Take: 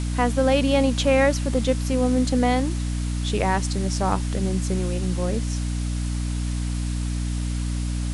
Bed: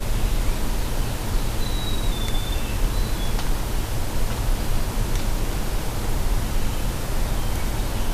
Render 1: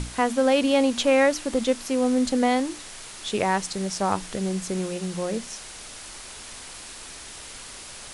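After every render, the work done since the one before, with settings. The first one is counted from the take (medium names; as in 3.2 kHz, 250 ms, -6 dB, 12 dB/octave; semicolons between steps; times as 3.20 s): hum notches 60/120/180/240/300 Hz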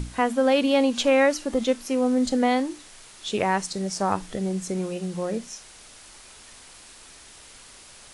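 noise print and reduce 7 dB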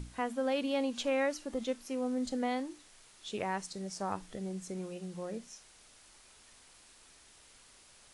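trim -12 dB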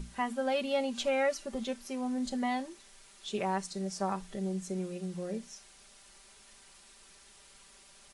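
comb 5.1 ms, depth 77%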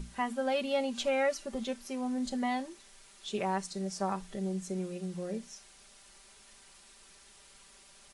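no audible change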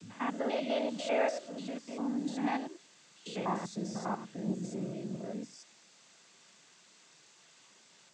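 spectrogram pixelated in time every 100 ms; noise-vocoded speech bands 16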